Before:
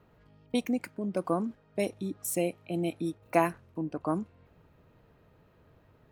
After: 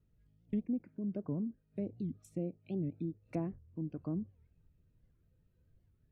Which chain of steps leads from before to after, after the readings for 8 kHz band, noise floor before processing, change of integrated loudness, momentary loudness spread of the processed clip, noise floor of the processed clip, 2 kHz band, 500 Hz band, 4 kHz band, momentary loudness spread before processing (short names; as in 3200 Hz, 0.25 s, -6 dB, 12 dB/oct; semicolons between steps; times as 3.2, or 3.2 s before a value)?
under -25 dB, -63 dBFS, -7.5 dB, 5 LU, -73 dBFS, -24.0 dB, -12.5 dB, under -25 dB, 8 LU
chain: treble ducked by the level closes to 790 Hz, closed at -27.5 dBFS; spectral noise reduction 10 dB; passive tone stack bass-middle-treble 10-0-1; record warp 78 rpm, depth 250 cents; gain +13 dB